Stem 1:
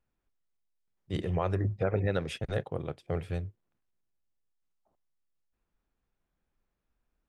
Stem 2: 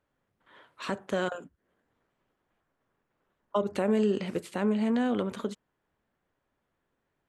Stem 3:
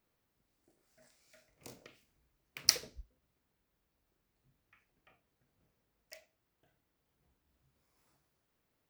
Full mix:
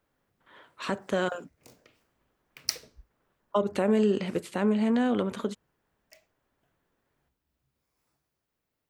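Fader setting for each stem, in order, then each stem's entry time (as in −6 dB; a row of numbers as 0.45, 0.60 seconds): muted, +2.0 dB, −3.0 dB; muted, 0.00 s, 0.00 s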